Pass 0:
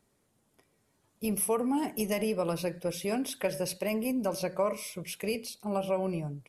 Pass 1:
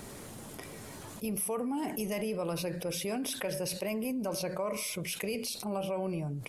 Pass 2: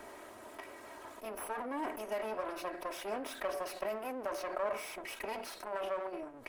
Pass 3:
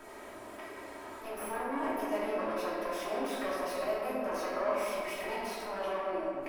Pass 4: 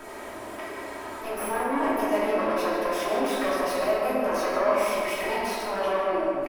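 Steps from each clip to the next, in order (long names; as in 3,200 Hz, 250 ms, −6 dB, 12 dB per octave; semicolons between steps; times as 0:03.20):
envelope flattener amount 70%; level −7 dB
lower of the sound and its delayed copy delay 3.1 ms; three-way crossover with the lows and the highs turned down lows −18 dB, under 390 Hz, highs −14 dB, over 2,300 Hz; level +3 dB
convolution reverb RT60 2.2 s, pre-delay 6 ms, DRR −6.5 dB; level −3 dB
single-tap delay 150 ms −11 dB; level +8.5 dB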